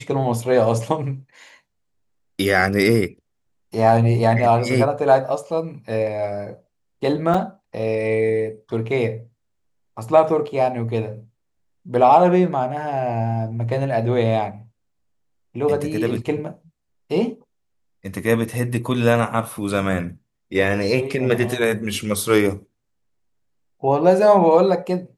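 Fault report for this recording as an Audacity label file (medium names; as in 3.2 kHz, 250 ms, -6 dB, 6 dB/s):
7.340000	7.340000	dropout 4.5 ms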